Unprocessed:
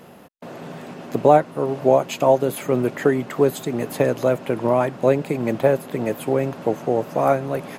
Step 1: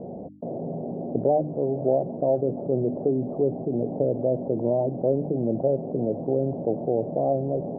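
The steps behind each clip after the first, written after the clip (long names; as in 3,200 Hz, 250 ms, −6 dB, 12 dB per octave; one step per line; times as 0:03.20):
Butterworth low-pass 720 Hz 48 dB per octave
mains-hum notches 50/100/150/200/250/300 Hz
envelope flattener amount 50%
level −7.5 dB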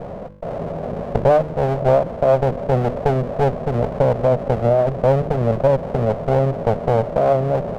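lower of the sound and its delayed copy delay 1.6 ms
level +7.5 dB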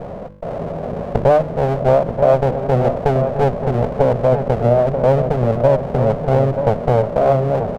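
slap from a distant wall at 160 metres, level −7 dB
level +1.5 dB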